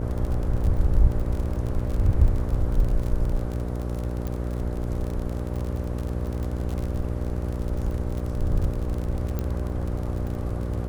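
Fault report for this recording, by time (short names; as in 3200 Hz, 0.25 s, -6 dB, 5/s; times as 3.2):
buzz 60 Hz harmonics 10 -29 dBFS
crackle 41/s -29 dBFS
4.27 pop
9.39 pop -16 dBFS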